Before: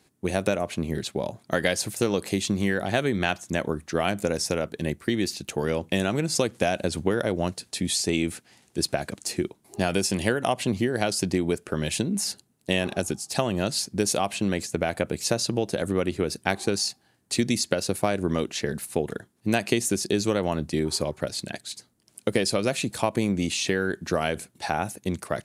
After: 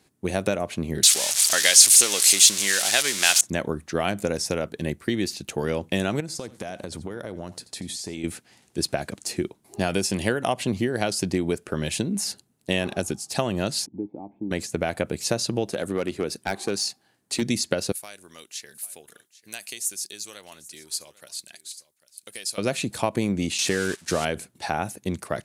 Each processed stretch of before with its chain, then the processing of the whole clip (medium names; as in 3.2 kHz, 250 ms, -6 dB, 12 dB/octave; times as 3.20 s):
1.03–3.41 s: zero-crossing glitches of -17 dBFS + frequency weighting ITU-R 468
6.20–8.24 s: peaking EQ 2.7 kHz -5 dB 0.38 oct + compression 4:1, threshold -31 dBFS + delay 85 ms -17.5 dB
13.86–14.51 s: companding laws mixed up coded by mu + cascade formant filter u
15.71–17.42 s: high-pass 190 Hz 6 dB/octave + hard clipper -17.5 dBFS
17.92–22.58 s: pre-emphasis filter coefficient 0.97 + delay 795 ms -19 dB
23.58–24.25 s: zero-crossing glitches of -18 dBFS + low-pass 9.5 kHz 24 dB/octave + gate -30 dBFS, range -16 dB
whole clip: none